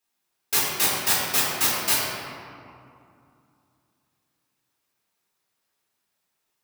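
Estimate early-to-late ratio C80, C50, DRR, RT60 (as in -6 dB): 0.5 dB, -1.0 dB, -9.0 dB, 2.5 s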